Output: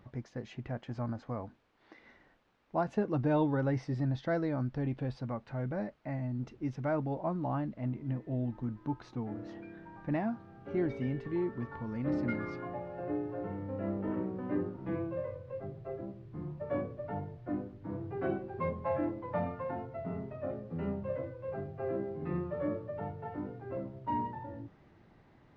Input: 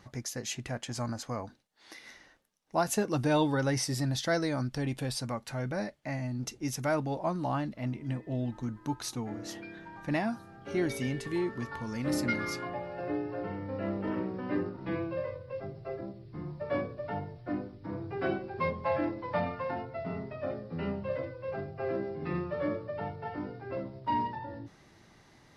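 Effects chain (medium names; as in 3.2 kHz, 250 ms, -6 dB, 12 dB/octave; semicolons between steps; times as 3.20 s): word length cut 10-bit, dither triangular; tape spacing loss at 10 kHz 45 dB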